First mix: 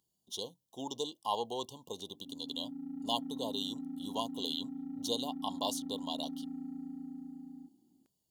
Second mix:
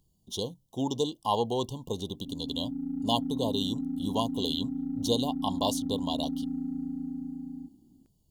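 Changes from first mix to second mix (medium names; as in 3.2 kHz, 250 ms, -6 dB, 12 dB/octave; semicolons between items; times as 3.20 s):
speech +4.0 dB; master: remove high-pass 660 Hz 6 dB/octave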